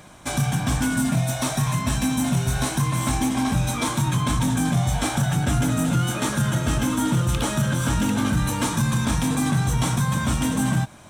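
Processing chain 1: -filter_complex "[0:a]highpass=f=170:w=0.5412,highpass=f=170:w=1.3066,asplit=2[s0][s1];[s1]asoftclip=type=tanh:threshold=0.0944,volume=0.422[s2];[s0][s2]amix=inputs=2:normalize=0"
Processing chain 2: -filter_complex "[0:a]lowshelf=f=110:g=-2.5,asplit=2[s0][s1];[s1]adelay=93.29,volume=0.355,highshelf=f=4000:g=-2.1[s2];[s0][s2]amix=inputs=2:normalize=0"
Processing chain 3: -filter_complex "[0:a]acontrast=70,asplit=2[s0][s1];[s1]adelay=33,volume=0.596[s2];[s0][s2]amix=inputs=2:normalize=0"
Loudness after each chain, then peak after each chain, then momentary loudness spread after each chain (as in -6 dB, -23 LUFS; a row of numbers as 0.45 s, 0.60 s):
-22.5 LUFS, -22.5 LUFS, -15.5 LUFS; -9.0 dBFS, -11.5 dBFS, -4.0 dBFS; 2 LU, 2 LU, 2 LU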